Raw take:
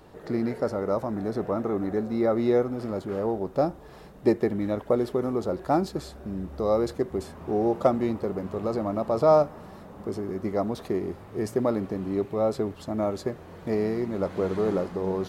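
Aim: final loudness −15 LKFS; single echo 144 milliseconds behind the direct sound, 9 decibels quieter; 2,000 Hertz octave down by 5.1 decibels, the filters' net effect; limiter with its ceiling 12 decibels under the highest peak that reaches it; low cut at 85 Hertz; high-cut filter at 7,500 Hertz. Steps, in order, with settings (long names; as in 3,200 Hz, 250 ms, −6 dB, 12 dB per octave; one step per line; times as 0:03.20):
high-pass filter 85 Hz
low-pass filter 7,500 Hz
parametric band 2,000 Hz −6.5 dB
brickwall limiter −21 dBFS
single-tap delay 144 ms −9 dB
level +16 dB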